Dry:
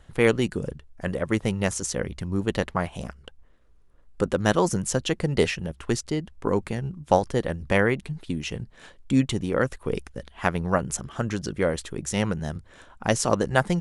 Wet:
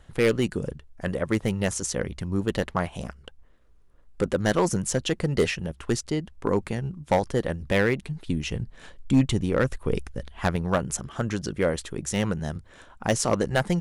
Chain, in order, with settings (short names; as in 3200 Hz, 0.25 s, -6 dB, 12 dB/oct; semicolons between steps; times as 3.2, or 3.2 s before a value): overloaded stage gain 14 dB; 8.25–10.56 low shelf 110 Hz +8.5 dB